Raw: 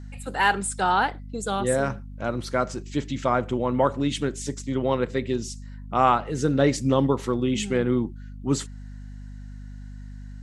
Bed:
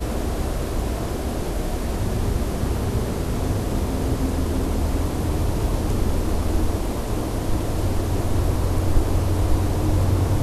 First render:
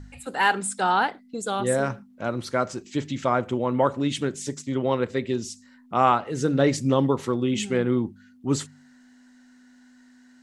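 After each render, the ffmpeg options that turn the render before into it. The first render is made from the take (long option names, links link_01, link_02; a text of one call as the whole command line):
ffmpeg -i in.wav -af "bandreject=frequency=50:width_type=h:width=4,bandreject=frequency=100:width_type=h:width=4,bandreject=frequency=150:width_type=h:width=4,bandreject=frequency=200:width_type=h:width=4" out.wav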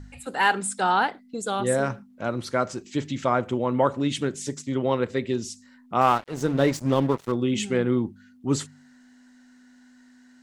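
ffmpeg -i in.wav -filter_complex "[0:a]asettb=1/sr,asplit=3[link_01][link_02][link_03];[link_01]atrim=end=6.014[link_04];[link_02]atrim=start=6.01:end=7.32,asetpts=PTS-STARTPTS,afade=type=in:duration=0.004:curve=qsin,afade=type=out:start_time=1.306:duration=0.004:curve=qsin,aeval=exprs='sgn(val(0))*max(abs(val(0))-0.0168,0)':channel_layout=same[link_05];[link_03]atrim=start=7.316[link_06];[link_04][link_05]acrossfade=duration=0.004:curve1=hsin:curve2=qsin[link_07];[link_07][link_06]acrossfade=duration=0.004:curve1=qsin:curve2=hsin" out.wav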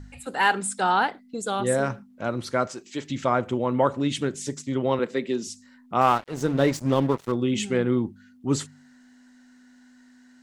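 ffmpeg -i in.wav -filter_complex "[0:a]asettb=1/sr,asplit=3[link_01][link_02][link_03];[link_01]atrim=end=2.674[link_04];[link_02]atrim=start=2.67:end=3.1,asetpts=PTS-STARTPTS,afade=type=in:duration=0.004:curve=qsin,afade=type=out:start_time=0.426:duration=0.004:curve=qsin,highpass=frequency=440:poles=1[link_05];[link_03]atrim=start=3.096[link_06];[link_04][link_05]acrossfade=duration=0.004:curve1=hsin:curve2=qsin[link_07];[link_07][link_06]acrossfade=duration=0.004:curve1=qsin:curve2=hsin,asettb=1/sr,asplit=3[link_08][link_09][link_10];[link_08]atrim=end=4.994[link_11];[link_09]atrim=start=4.99:end=5.47,asetpts=PTS-STARTPTS,afade=type=in:duration=0.004:curve=qsin,afade=type=out:start_time=0.476:duration=0.004:curve=qsin,highpass=frequency=170:width=0.5412,highpass=frequency=170:width=1.3066[link_12];[link_10]atrim=start=5.466[link_13];[link_11][link_12]acrossfade=duration=0.004:curve1=hsin:curve2=qsin[link_14];[link_14][link_13]acrossfade=duration=0.004:curve1=qsin:curve2=hsin" out.wav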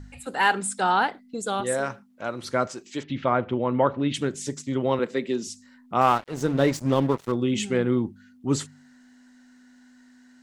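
ffmpeg -i in.wav -filter_complex "[0:a]asettb=1/sr,asplit=3[link_01][link_02][link_03];[link_01]atrim=end=1.614[link_04];[link_02]atrim=start=1.61:end=2.43,asetpts=PTS-STARTPTS,afade=type=in:duration=0.004:curve=qsin,afade=type=out:start_time=0.816:duration=0.004:curve=qsin,lowshelf=frequency=310:gain=-10.5[link_05];[link_03]atrim=start=2.426[link_06];[link_04][link_05]acrossfade=duration=0.004:curve1=hsin:curve2=qsin[link_07];[link_07][link_06]acrossfade=duration=0.004:curve1=qsin:curve2=hsin,asettb=1/sr,asplit=3[link_08][link_09][link_10];[link_08]atrim=end=3.034[link_11];[link_09]atrim=start=3.03:end=4.14,asetpts=PTS-STARTPTS,afade=type=in:duration=0.004:curve=qsin,afade=type=out:start_time=1.106:duration=0.004:curve=qsin,lowpass=frequency=3700:width=0.5412,lowpass=frequency=3700:width=1.3066[link_12];[link_10]atrim=start=4.136[link_13];[link_11][link_12]acrossfade=duration=0.004:curve1=hsin:curve2=qsin[link_14];[link_14][link_13]acrossfade=duration=0.004:curve1=qsin:curve2=hsin" out.wav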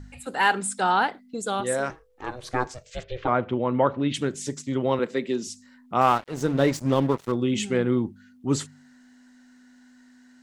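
ffmpeg -i in.wav -filter_complex "[0:a]asettb=1/sr,asplit=3[link_01][link_02][link_03];[link_01]atrim=end=1.904[link_04];[link_02]atrim=start=1.9:end=3.28,asetpts=PTS-STARTPTS,afade=type=in:duration=0.004:curve=qsin,afade=type=out:start_time=1.376:duration=0.004:curve=qsin,aeval=exprs='val(0)*sin(2*PI*250*n/s)':channel_layout=same[link_05];[link_03]atrim=start=3.276[link_06];[link_04][link_05]acrossfade=duration=0.004:curve1=hsin:curve2=qsin[link_07];[link_07][link_06]acrossfade=duration=0.004:curve1=qsin:curve2=hsin" out.wav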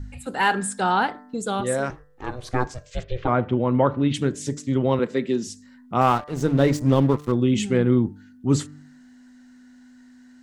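ffmpeg -i in.wav -af "lowshelf=frequency=240:gain=9.5,bandreject=frequency=148.1:width_type=h:width=4,bandreject=frequency=296.2:width_type=h:width=4,bandreject=frequency=444.3:width_type=h:width=4,bandreject=frequency=592.4:width_type=h:width=4,bandreject=frequency=740.5:width_type=h:width=4,bandreject=frequency=888.6:width_type=h:width=4,bandreject=frequency=1036.7:width_type=h:width=4,bandreject=frequency=1184.8:width_type=h:width=4,bandreject=frequency=1332.9:width_type=h:width=4,bandreject=frequency=1481:width_type=h:width=4,bandreject=frequency=1629.1:width_type=h:width=4,bandreject=frequency=1777.2:width_type=h:width=4,bandreject=frequency=1925.3:width_type=h:width=4" out.wav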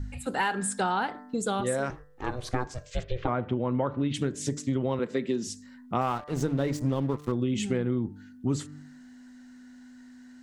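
ffmpeg -i in.wav -af "acompressor=threshold=-24dB:ratio=6" out.wav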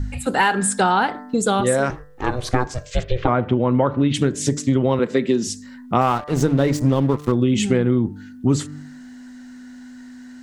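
ffmpeg -i in.wav -af "volume=10dB" out.wav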